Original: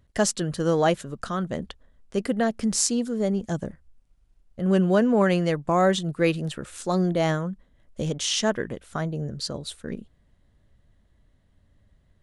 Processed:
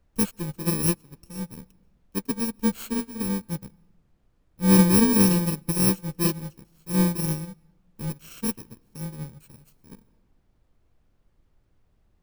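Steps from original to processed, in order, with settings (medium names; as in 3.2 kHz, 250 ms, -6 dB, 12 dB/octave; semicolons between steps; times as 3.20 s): bit-reversed sample order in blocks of 64 samples; bass shelf 450 Hz +10.5 dB; added noise brown -39 dBFS; on a send at -15.5 dB: reverberation RT60 1.1 s, pre-delay 129 ms; on the sum: upward expansion 2.5:1, over -28 dBFS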